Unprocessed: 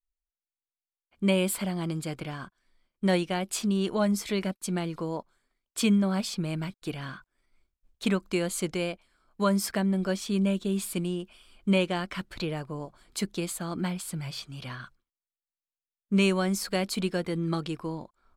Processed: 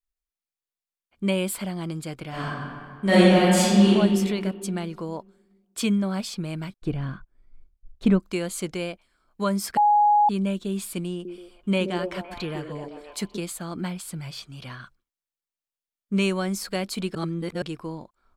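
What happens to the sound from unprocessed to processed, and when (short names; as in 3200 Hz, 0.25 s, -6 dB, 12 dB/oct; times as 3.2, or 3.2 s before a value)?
2.29–3.88 reverb throw, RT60 2 s, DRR -10.5 dB
6.76–8.2 tilt -3.5 dB/oct
9.77–10.29 bleep 832 Hz -14.5 dBFS
11.12–13.39 delay with a stepping band-pass 0.128 s, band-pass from 330 Hz, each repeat 0.7 oct, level -1.5 dB
17.15–17.62 reverse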